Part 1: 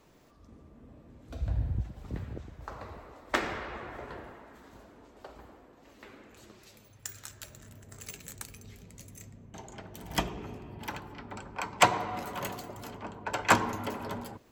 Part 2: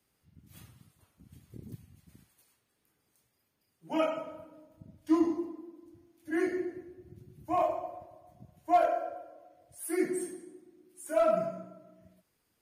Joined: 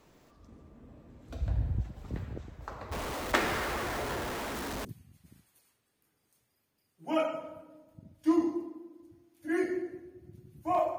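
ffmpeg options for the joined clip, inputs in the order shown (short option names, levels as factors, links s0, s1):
-filter_complex "[0:a]asettb=1/sr,asplit=3[s0][s1][s2];[s0]atrim=end=2.914[s3];[s1]atrim=start=2.91:end=4.85,asetpts=PTS-STARTPTS,afade=t=in:d=0.004:c=qsin,afade=t=out:st=1.936:d=0.004:c=qsin,aeval=exprs='val(0)+0.5*0.0251*sgn(val(0))':c=same[s4];[s2]atrim=start=4.846[s5];[s3][s4]acrossfade=d=0.004:c1=hsin:c2=qsin[s6];[s6][s5]acrossfade=d=0.004:c1=qsin:c2=hsin,apad=whole_dur=10.98,atrim=end=10.98,atrim=end=4.852[s7];[1:a]atrim=start=1.678:end=7.81[s8];[s7][s8]acrossfade=d=0.004:c1=hsin:c2=hsin"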